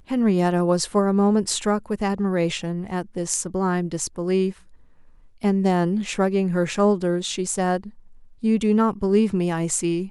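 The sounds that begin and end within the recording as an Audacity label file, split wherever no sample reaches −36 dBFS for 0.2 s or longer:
5.430000	7.890000	sound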